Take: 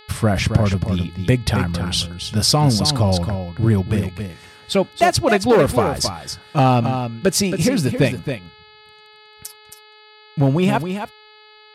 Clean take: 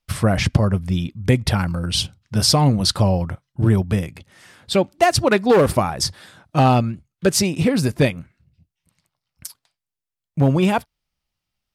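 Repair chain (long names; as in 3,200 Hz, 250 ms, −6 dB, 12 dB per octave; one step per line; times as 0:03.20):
hum removal 426.8 Hz, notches 11
echo removal 271 ms −8 dB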